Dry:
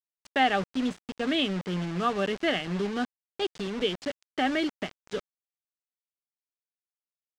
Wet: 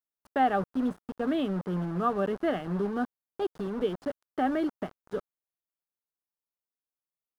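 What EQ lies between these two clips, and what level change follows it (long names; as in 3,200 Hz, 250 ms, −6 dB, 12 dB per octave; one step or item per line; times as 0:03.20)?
flat-topped bell 4,000 Hz −15 dB 2.4 octaves
0.0 dB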